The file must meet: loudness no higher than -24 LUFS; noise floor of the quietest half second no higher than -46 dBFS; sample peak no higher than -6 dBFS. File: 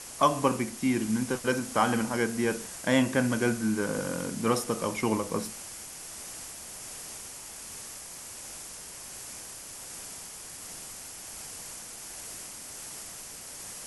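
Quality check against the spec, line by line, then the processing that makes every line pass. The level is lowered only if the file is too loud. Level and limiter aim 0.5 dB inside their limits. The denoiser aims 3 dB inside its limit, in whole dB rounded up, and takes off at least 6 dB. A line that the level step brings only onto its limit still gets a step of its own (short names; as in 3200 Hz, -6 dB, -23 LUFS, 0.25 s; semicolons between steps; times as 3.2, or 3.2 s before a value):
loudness -31.5 LUFS: OK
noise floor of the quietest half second -43 dBFS: fail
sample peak -9.5 dBFS: OK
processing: denoiser 6 dB, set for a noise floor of -43 dBFS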